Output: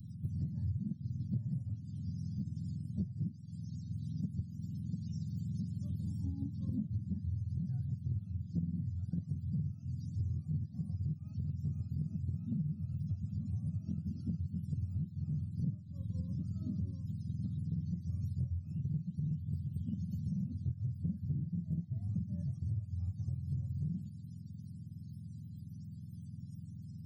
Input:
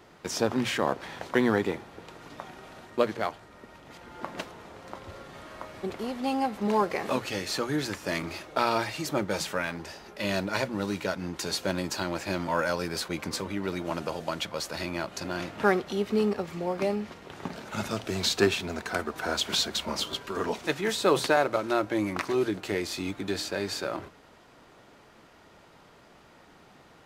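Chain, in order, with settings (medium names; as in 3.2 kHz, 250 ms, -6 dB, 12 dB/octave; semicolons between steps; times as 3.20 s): spectrum inverted on a logarithmic axis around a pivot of 470 Hz; elliptic band-stop 190–4900 Hz, stop band 40 dB; treble shelf 4.8 kHz -9.5 dB; compression 8:1, threshold -44 dBFS, peak gain reduction 22.5 dB; treble shelf 11 kHz +11 dB; trim +10 dB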